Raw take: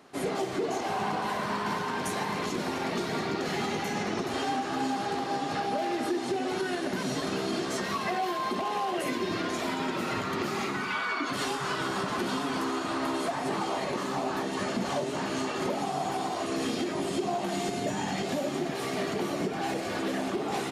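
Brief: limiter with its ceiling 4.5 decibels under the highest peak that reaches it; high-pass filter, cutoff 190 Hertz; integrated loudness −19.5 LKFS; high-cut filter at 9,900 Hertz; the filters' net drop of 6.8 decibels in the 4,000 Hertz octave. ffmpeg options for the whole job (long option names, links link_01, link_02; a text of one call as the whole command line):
ffmpeg -i in.wav -af "highpass=190,lowpass=9900,equalizer=frequency=4000:width_type=o:gain=-9,volume=13.5dB,alimiter=limit=-10.5dB:level=0:latency=1" out.wav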